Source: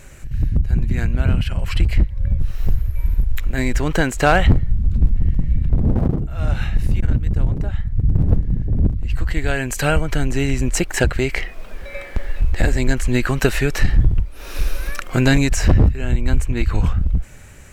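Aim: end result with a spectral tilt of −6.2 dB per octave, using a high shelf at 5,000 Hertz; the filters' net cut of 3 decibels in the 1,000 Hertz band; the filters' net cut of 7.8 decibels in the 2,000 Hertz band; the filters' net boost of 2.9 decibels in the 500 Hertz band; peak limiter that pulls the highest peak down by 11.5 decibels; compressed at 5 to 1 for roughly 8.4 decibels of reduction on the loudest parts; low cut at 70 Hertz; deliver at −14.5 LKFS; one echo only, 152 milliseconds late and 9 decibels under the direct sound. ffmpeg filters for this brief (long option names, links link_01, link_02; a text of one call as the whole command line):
ffmpeg -i in.wav -af "highpass=70,equalizer=frequency=500:width_type=o:gain=5.5,equalizer=frequency=1000:width_type=o:gain=-5.5,equalizer=frequency=2000:width_type=o:gain=-8,highshelf=frequency=5000:gain=-5.5,acompressor=threshold=-19dB:ratio=5,alimiter=limit=-18.5dB:level=0:latency=1,aecho=1:1:152:0.355,volume=14.5dB" out.wav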